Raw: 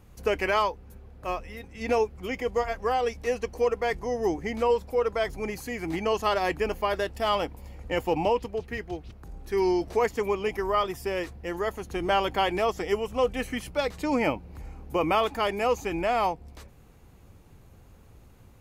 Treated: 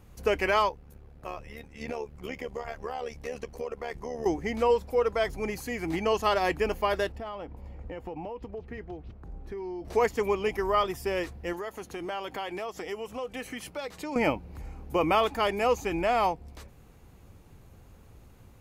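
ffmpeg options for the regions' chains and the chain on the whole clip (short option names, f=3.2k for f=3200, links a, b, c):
-filter_complex "[0:a]asettb=1/sr,asplit=3[a][b][c];[a]atrim=end=0.694[d];[b]atrim=start=0.69:end=4.26,asetpts=PTS-STARTPTS,afade=t=in:d=0.004:c=qsin,afade=t=out:st=3.566:d=0.004:c=qsin,acompressor=threshold=-29dB:ratio=4:attack=3.2:release=140:knee=1:detection=peak,tremolo=f=73:d=0.75[e];[c]atrim=start=4.256[f];[d][e]acrossfade=d=0.004:c1=hsin:c2=qsin[g];[g][f]acrossfade=d=0.004:c1=qsin:c2=hsin,asettb=1/sr,asplit=3[h][i][j];[h]atrim=end=7.124[k];[i]atrim=start=7.12:end=9.85,asetpts=PTS-STARTPTS,afade=t=in:d=0.004:c=qsin,afade=t=out:st=2.726:d=0.004:c=qsin,lowpass=f=1.2k:p=1,acompressor=threshold=-34dB:ratio=8:attack=3.2:release=140:knee=1:detection=peak[l];[j]atrim=start=9.846[m];[k][l]acrossfade=d=0.004:c1=hsin:c2=qsin[n];[n][m]acrossfade=d=0.004:c1=qsin:c2=hsin,asettb=1/sr,asplit=3[o][p][q];[o]atrim=end=11.534[r];[p]atrim=start=11.53:end=14.16,asetpts=PTS-STARTPTS,afade=t=in:d=0.004:c=qsin,afade=t=out:st=2.626:d=0.004:c=qsin,highpass=f=230:p=1,acompressor=threshold=-34dB:ratio=3:attack=3.2:release=140:knee=1:detection=peak[s];[q]atrim=start=14.156[t];[r][s]acrossfade=d=0.004:c1=hsin:c2=qsin[u];[u][t]acrossfade=d=0.004:c1=qsin:c2=hsin"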